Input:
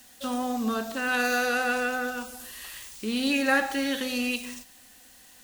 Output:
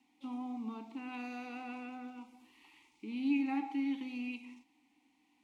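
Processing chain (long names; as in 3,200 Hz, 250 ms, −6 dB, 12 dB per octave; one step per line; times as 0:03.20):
formant filter u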